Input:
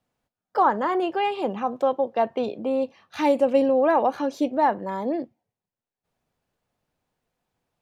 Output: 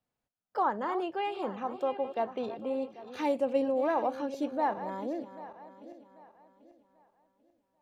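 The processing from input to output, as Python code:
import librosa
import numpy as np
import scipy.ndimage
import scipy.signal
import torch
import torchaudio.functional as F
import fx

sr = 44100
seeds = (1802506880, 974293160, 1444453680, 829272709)

y = fx.reverse_delay_fb(x, sr, ms=395, feedback_pct=55, wet_db=-12.5)
y = y * 10.0 ** (-9.0 / 20.0)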